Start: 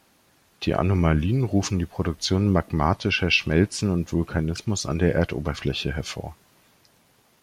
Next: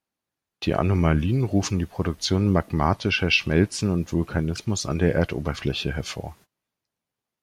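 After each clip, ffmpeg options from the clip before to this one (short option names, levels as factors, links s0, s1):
-af "agate=range=0.0501:threshold=0.00355:ratio=16:detection=peak"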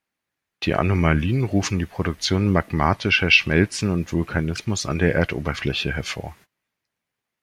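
-af "equalizer=f=2000:w=1.3:g=8,volume=1.12"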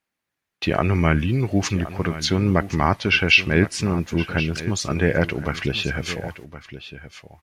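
-af "aecho=1:1:1068:0.2"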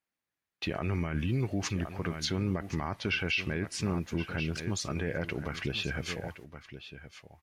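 -af "alimiter=limit=0.251:level=0:latency=1:release=58,volume=0.376"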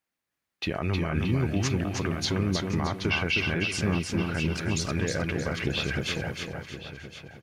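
-af "aecho=1:1:312|624|936|1248|1560:0.631|0.24|0.0911|0.0346|0.0132,volume=1.5"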